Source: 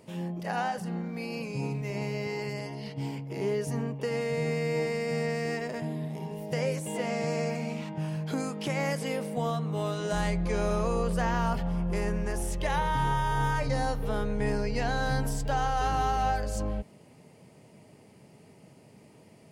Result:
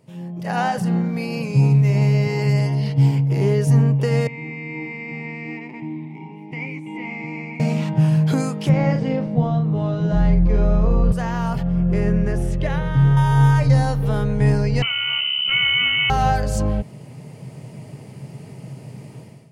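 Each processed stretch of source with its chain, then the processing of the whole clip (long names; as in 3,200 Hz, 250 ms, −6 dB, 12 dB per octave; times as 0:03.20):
0:04.27–0:07.60: formant filter u + parametric band 2,100 Hz +11 dB 0.82 octaves
0:08.69–0:11.12: low-pass filter 5,800 Hz 24 dB per octave + spectral tilt −3 dB per octave + double-tracking delay 42 ms −6 dB
0:11.63–0:13.17: low-pass filter 1,700 Hz 6 dB per octave + parametric band 930 Hz −12 dB 0.42 octaves
0:14.82–0:16.10: phaser with its sweep stopped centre 870 Hz, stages 8 + voice inversion scrambler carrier 3,000 Hz
whole clip: parametric band 130 Hz +14.5 dB 0.6 octaves; automatic gain control gain up to 16.5 dB; level −5 dB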